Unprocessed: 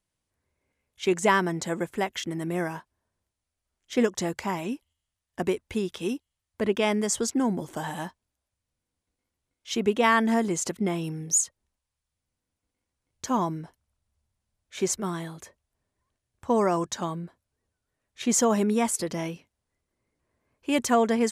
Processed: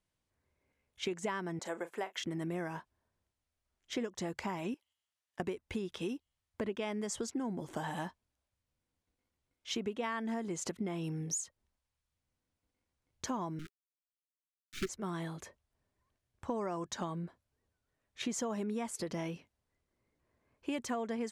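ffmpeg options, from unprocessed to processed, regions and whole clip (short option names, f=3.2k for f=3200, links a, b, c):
-filter_complex "[0:a]asettb=1/sr,asplit=3[a][b][c];[a]atrim=end=1.594[d];[b]atrim=start=1.59:end=2.18,asetpts=PTS-STARTPTS,afade=t=in:d=0.004:c=qsin,afade=t=out:st=0.586:d=0.004:c=qsin,highpass=470,equalizer=f=3.9k:t=o:w=2.3:g=-4.5,asplit=2[e][f];[f]adelay=36,volume=-14dB[g];[e][g]amix=inputs=2:normalize=0,atrim=end_sample=26019[h];[c]atrim=start=2.176[i];[d][h]acrossfade=d=0.004:c1=hsin:c2=qsin[j];[j][i]acrossfade=d=0.004:c1=qsin:c2=hsin,asettb=1/sr,asplit=3[k][l][m];[k]atrim=end=4.744[n];[l]atrim=start=4.74:end=5.4,asetpts=PTS-STARTPTS,afade=t=in:d=0.004:c=qsin,afade=t=out:st=0.656:d=0.004:c=qsin,highpass=f=890:p=1,acompressor=threshold=-52dB:ratio=3:attack=3.2:release=140:knee=1:detection=peak[o];[m]atrim=start=5.396[p];[n][o]acrossfade=d=0.004:c1=hsin:c2=qsin[q];[q][p]acrossfade=d=0.004:c1=qsin:c2=hsin,asettb=1/sr,asplit=3[r][s][t];[r]atrim=end=13.594[u];[s]atrim=start=13.59:end=14.89,asetpts=PTS-STARTPTS,afade=t=in:d=0.004:c=qsin,afade=t=out:st=1.296:d=0.004:c=qsin,equalizer=f=600:t=o:w=1.5:g=5.5,acrusher=bits=4:dc=4:mix=0:aa=0.000001,asuperstop=centerf=710:order=20:qfactor=0.86[v];[t]atrim=start=14.886[w];[u][v]acrossfade=d=0.004:c1=hsin:c2=qsin[x];[x][w]acrossfade=d=0.004:c1=qsin:c2=hsin,highshelf=f=8.2k:g=-10,acompressor=threshold=-33dB:ratio=6,volume=-1.5dB"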